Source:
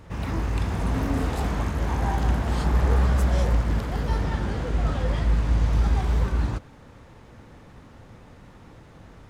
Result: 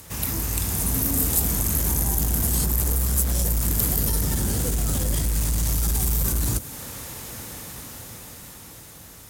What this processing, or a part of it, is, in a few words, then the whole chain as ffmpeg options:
FM broadcast chain: -filter_complex "[0:a]highpass=41,dynaudnorm=f=410:g=9:m=3.55,acrossover=split=420|7100[s0][s1][s2];[s0]acompressor=threshold=0.178:ratio=4[s3];[s1]acompressor=threshold=0.0112:ratio=4[s4];[s2]acompressor=threshold=0.00398:ratio=4[s5];[s3][s4][s5]amix=inputs=3:normalize=0,aemphasis=mode=production:type=75fm,alimiter=limit=0.168:level=0:latency=1:release=26,asoftclip=type=hard:threshold=0.112,lowpass=f=15000:w=0.5412,lowpass=f=15000:w=1.3066,aemphasis=mode=production:type=75fm"

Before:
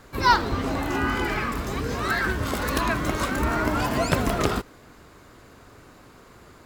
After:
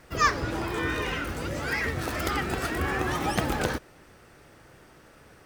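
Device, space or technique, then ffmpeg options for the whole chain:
nightcore: -af "asetrate=53802,aresample=44100,volume=0.631"

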